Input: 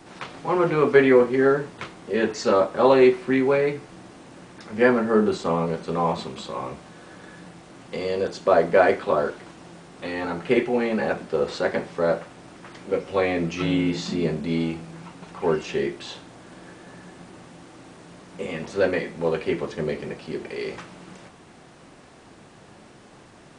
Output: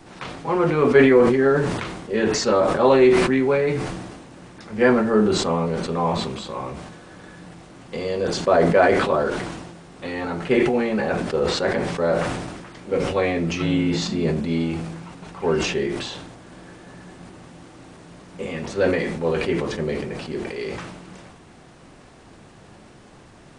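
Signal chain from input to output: bass shelf 91 Hz +10 dB; decay stretcher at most 40 dB/s

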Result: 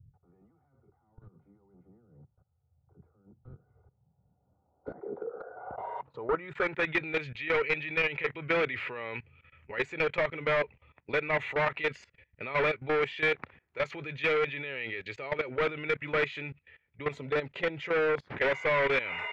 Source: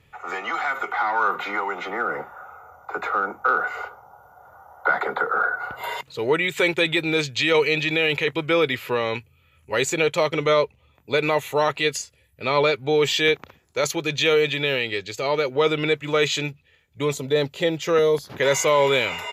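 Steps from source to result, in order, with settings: level held to a coarse grid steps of 20 dB; hard clipper -26 dBFS, distortion -6 dB; low-pass sweep 120 Hz -> 2.1 kHz, 3.75–6.99 s

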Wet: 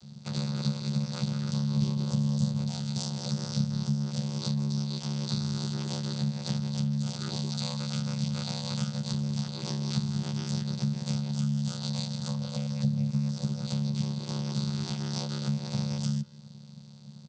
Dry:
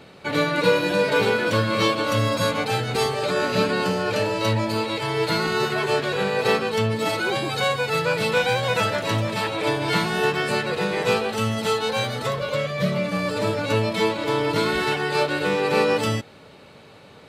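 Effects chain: 1.74–2.69 s: bass shelf 390 Hz +10 dB; vocoder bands 16, saw 179 Hz; speakerphone echo 160 ms, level -19 dB; ring modulator 35 Hz; FFT filter 200 Hz 0 dB, 280 Hz -20 dB, 590 Hz -19 dB, 880 Hz -16 dB, 2.3 kHz -17 dB, 4.9 kHz +10 dB; compression 2.5:1, threshold -36 dBFS, peak gain reduction 13 dB; trim +6.5 dB

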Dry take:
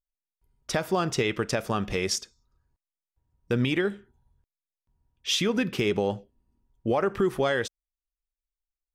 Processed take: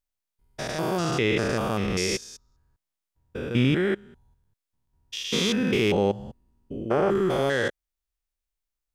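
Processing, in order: spectrogram pixelated in time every 200 ms; trim +6 dB

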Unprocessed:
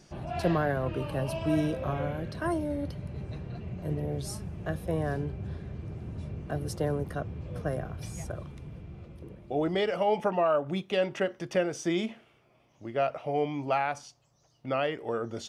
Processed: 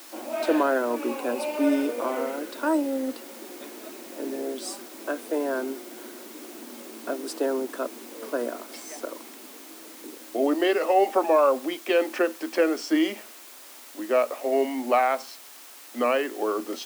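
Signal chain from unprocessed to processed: speed mistake 48 kHz file played as 44.1 kHz; added noise white -51 dBFS; rippled Chebyshev high-pass 230 Hz, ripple 3 dB; trim +7.5 dB

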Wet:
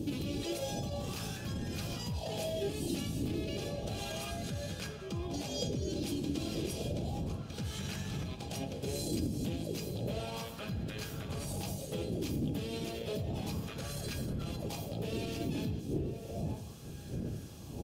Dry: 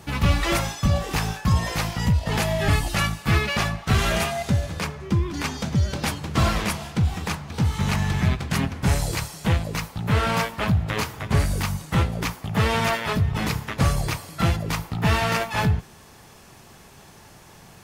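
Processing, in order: wind noise 110 Hz -19 dBFS; high-pass 76 Hz 12 dB/octave; bass shelf 150 Hz -8.5 dB; compression, threshold -24 dBFS, peak gain reduction 13.5 dB; peak limiter -24.5 dBFS, peak gain reduction 10.5 dB; high-order bell 1.3 kHz -15.5 dB; feedback comb 810 Hz, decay 0.21 s, harmonics all, mix 80%; echo from a far wall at 160 m, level -9 dB; sweeping bell 0.32 Hz 280–1600 Hz +12 dB; trim +8 dB

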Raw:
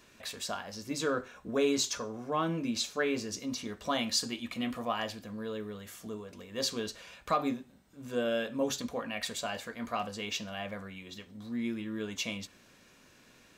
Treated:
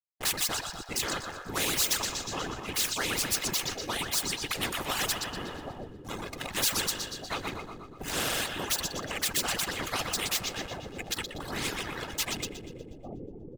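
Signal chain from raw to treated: dynamic bell 340 Hz, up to +6 dB, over -45 dBFS, Q 0.93; tremolo 0.61 Hz, depth 72%; expander -51 dBFS; peaking EQ 440 Hz -12.5 dB 1.2 oct; whisper effect; hysteresis with a dead band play -45.5 dBFS; band-stop 2.3 kHz, Q 16; comb 2.4 ms, depth 38%; two-band feedback delay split 570 Hz, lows 778 ms, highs 121 ms, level -8.5 dB; reverb removal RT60 2 s; spectrum-flattening compressor 4:1; trim +6 dB

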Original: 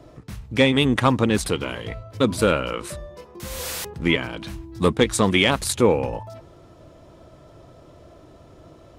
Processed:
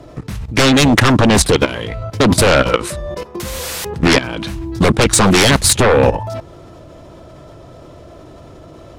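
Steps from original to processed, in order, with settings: sine folder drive 11 dB, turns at -5 dBFS; level held to a coarse grid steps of 14 dB; loudspeaker Doppler distortion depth 0.24 ms; trim +4 dB

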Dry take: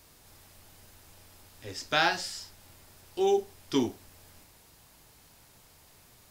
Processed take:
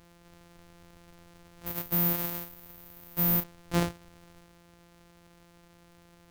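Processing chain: sorted samples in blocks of 256 samples; 1.66–3.44 s: careless resampling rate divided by 3×, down none, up zero stuff; hard clipper -18.5 dBFS, distortion -6 dB

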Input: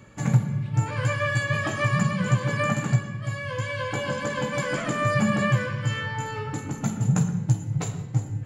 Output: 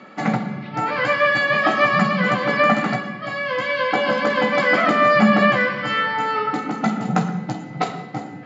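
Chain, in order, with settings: elliptic band-pass 210–4800 Hz, stop band 40 dB; small resonant body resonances 740/1300/2000 Hz, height 12 dB, ringing for 45 ms; trim +9 dB

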